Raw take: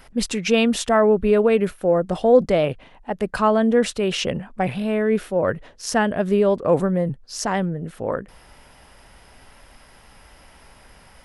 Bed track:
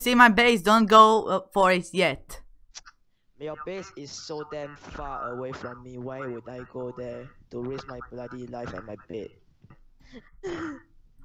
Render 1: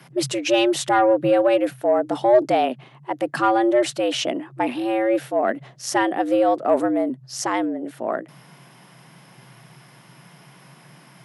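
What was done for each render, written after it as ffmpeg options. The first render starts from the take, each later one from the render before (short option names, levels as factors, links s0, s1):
-af "afreqshift=120,asoftclip=type=tanh:threshold=0.562"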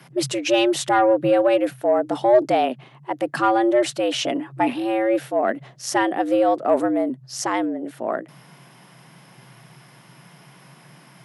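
-filter_complex "[0:a]asettb=1/sr,asplit=3[s0][s1][s2];[s0]atrim=end=4.234[s3];[s1]atrim=start=4.23:end=4.73,asetpts=PTS-STARTPTS,afade=t=in:d=0.004:c=qsin,afade=t=out:st=0.496:d=0.004:c=qsin,aecho=1:1:7.1:0.65,atrim=end_sample=22050[s4];[s2]atrim=start=4.726[s5];[s3][s4]acrossfade=d=0.004:c1=hsin:c2=qsin[s6];[s6][s5]acrossfade=d=0.004:c1=qsin:c2=hsin"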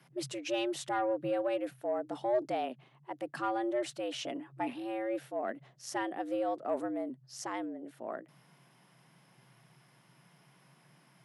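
-af "volume=0.178"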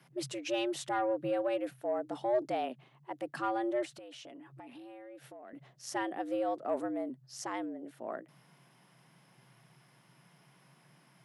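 -filter_complex "[0:a]asettb=1/sr,asplit=3[s0][s1][s2];[s0]atrim=end=3.854[s3];[s1]atrim=start=3.85:end=5.53,asetpts=PTS-STARTPTS,afade=t=in:d=0.004:c=qsin,afade=t=out:st=1.676:d=0.004:c=qsin,acompressor=threshold=0.00501:ratio=12:attack=3.2:release=140:knee=1:detection=peak[s4];[s2]atrim=start=5.526[s5];[s3][s4]acrossfade=d=0.004:c1=hsin:c2=qsin[s6];[s6][s5]acrossfade=d=0.004:c1=qsin:c2=hsin"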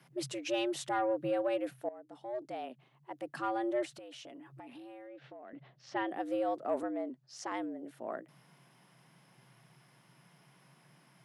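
-filter_complex "[0:a]asettb=1/sr,asplit=3[s0][s1][s2];[s0]atrim=end=5.074[s3];[s1]atrim=start=5.07:end=6.09,asetpts=PTS-STARTPTS,afade=t=in:d=0.004:c=qsin,afade=t=out:st=1.016:d=0.004:c=qsin,lowpass=f=4200:w=0.5412,lowpass=f=4200:w=1.3066[s4];[s2]atrim=start=6.086[s5];[s3][s4]acrossfade=d=0.004:c1=hsin:c2=qsin[s6];[s6][s5]acrossfade=d=0.004:c1=qsin:c2=hsin,asettb=1/sr,asplit=3[s7][s8][s9];[s7]atrim=end=6.834[s10];[s8]atrim=start=6.83:end=7.52,asetpts=PTS-STARTPTS,afade=t=in:d=0.004:c=qsin,afade=t=out:st=0.686:d=0.004:c=qsin,highpass=240,lowpass=6000[s11];[s9]atrim=start=7.516[s12];[s10][s11]acrossfade=d=0.004:c1=hsin:c2=qsin[s13];[s13][s12]acrossfade=d=0.004:c1=qsin:c2=hsin,asplit=2[s14][s15];[s14]atrim=end=1.89,asetpts=PTS-STARTPTS,afade=t=out:st=1.886:d=0.004:c=hsin:silence=0.125893[s16];[s15]atrim=start=1.89,asetpts=PTS-STARTPTS,afade=t=in:d=1.91:silence=0.125893[s17];[s16][s17]concat=n=2:v=0:a=1"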